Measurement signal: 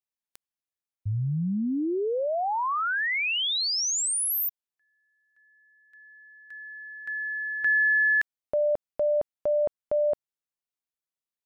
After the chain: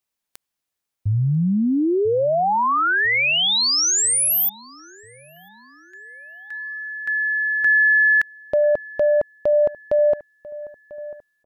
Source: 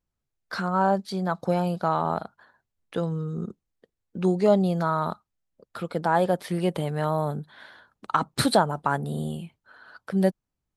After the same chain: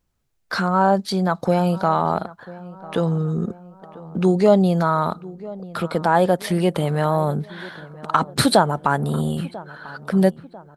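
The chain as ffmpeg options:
-filter_complex "[0:a]asplit=2[s0][s1];[s1]acompressor=threshold=0.0316:ratio=6:attack=0.21:release=101:knee=1:detection=rms,volume=1.26[s2];[s0][s2]amix=inputs=2:normalize=0,asplit=2[s3][s4];[s4]adelay=994,lowpass=f=1600:p=1,volume=0.119,asplit=2[s5][s6];[s6]adelay=994,lowpass=f=1600:p=1,volume=0.52,asplit=2[s7][s8];[s8]adelay=994,lowpass=f=1600:p=1,volume=0.52,asplit=2[s9][s10];[s10]adelay=994,lowpass=f=1600:p=1,volume=0.52[s11];[s3][s5][s7][s9][s11]amix=inputs=5:normalize=0,volume=1.5"

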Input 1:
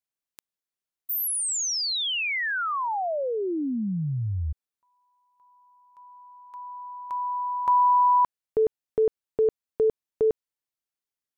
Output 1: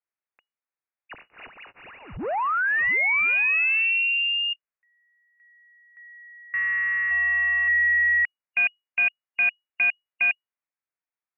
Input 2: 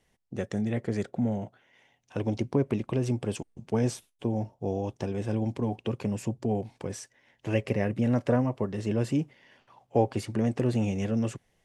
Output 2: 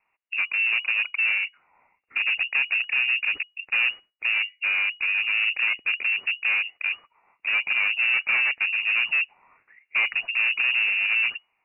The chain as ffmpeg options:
-filter_complex "[0:a]afwtdn=0.0224,asplit=2[s0][s1];[s1]highpass=f=720:p=1,volume=35.5,asoftclip=type=tanh:threshold=0.251[s2];[s0][s2]amix=inputs=2:normalize=0,lowpass=f=1600:p=1,volume=0.501,lowpass=f=2500:t=q:w=0.5098,lowpass=f=2500:t=q:w=0.6013,lowpass=f=2500:t=q:w=0.9,lowpass=f=2500:t=q:w=2.563,afreqshift=-2900,volume=0.708"

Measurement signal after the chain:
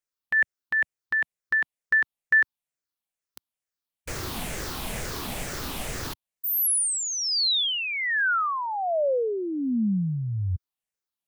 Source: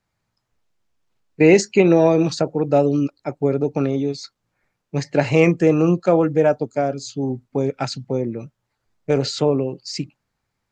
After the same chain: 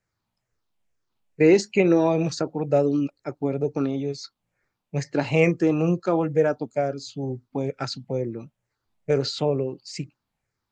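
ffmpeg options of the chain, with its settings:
-af "afftfilt=real='re*pow(10,7/40*sin(2*PI*(0.52*log(max(b,1)*sr/1024/100)/log(2)-(-2.2)*(pts-256)/sr)))':imag='im*pow(10,7/40*sin(2*PI*(0.52*log(max(b,1)*sr/1024/100)/log(2)-(-2.2)*(pts-256)/sr)))':win_size=1024:overlap=0.75,volume=0.531"

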